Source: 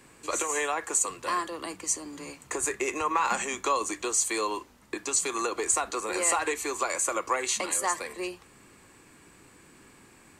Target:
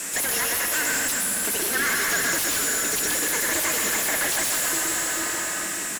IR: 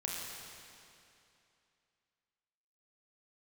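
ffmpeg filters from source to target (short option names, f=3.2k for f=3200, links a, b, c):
-filter_complex "[0:a]asetrate=76440,aresample=44100,asplit=2[a][b];[b]adelay=439,lowpass=f=2.3k:p=1,volume=-13dB,asplit=2[c][d];[d]adelay=439,lowpass=f=2.3k:p=1,volume=0.36,asplit=2[e][f];[f]adelay=439,lowpass=f=2.3k:p=1,volume=0.36,asplit=2[g][h];[h]adelay=439,lowpass=f=2.3k:p=1,volume=0.36[i];[a][c][e][g][i]amix=inputs=5:normalize=0,afreqshift=-300,asplit=2[j][k];[k]asetrate=58866,aresample=44100,atempo=0.749154,volume=-16dB[l];[j][l]amix=inputs=2:normalize=0,alimiter=limit=-18.5dB:level=0:latency=1:release=174,highpass=170,equalizer=f=190:t=q:w=4:g=9,equalizer=f=290:t=q:w=4:g=5,equalizer=f=1.9k:t=q:w=4:g=7,equalizer=f=4.5k:t=q:w=4:g=-9,equalizer=f=6.3k:t=q:w=4:g=-4,lowpass=f=8.7k:w=0.5412,lowpass=f=8.7k:w=1.3066,aexciter=amount=15.1:drive=6.4:freq=5.6k,asplit=2[m][n];[1:a]atrim=start_sample=2205,adelay=122[o];[n][o]afir=irnorm=-1:irlink=0,volume=-2dB[p];[m][p]amix=inputs=2:normalize=0,aeval=exprs='0.133*(abs(mod(val(0)/0.133+3,4)-2)-1)':c=same,asplit=2[q][r];[r]highpass=f=720:p=1,volume=29dB,asoftclip=type=tanh:threshold=-17.5dB[s];[q][s]amix=inputs=2:normalize=0,lowpass=f=6k:p=1,volume=-6dB"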